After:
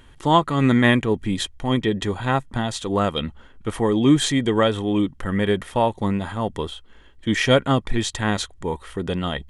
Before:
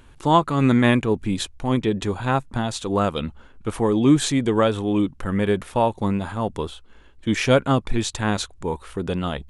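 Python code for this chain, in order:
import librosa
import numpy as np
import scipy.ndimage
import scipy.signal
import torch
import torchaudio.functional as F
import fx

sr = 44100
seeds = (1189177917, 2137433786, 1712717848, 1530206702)

y = fx.small_body(x, sr, hz=(1900.0, 3200.0), ring_ms=35, db=12)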